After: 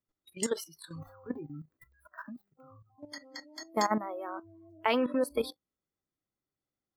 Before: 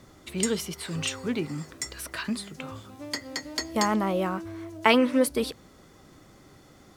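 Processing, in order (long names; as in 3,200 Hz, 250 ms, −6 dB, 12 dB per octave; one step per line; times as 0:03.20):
0:00.98–0:02.99: running median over 15 samples
noise reduction from a noise print of the clip's start 29 dB
output level in coarse steps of 13 dB
dynamic equaliser 730 Hz, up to +5 dB, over −42 dBFS, Q 0.76
level −3 dB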